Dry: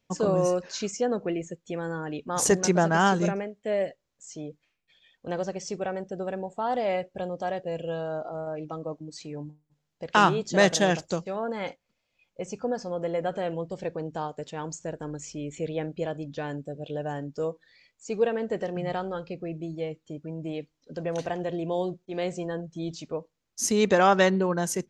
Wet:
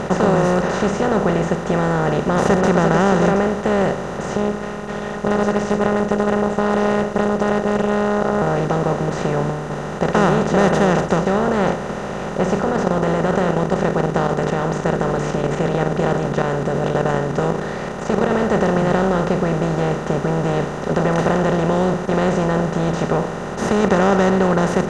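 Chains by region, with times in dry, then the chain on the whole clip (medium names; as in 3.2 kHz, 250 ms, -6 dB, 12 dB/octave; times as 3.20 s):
4.36–8.42 s: robot voice 207 Hz + loudspeaker Doppler distortion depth 0.26 ms
12.59–18.31 s: hum notches 50/100/150/200/250/300/350/400/450 Hz + level held to a coarse grid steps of 11 dB
whole clip: spectral levelling over time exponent 0.2; RIAA curve playback; trim -4.5 dB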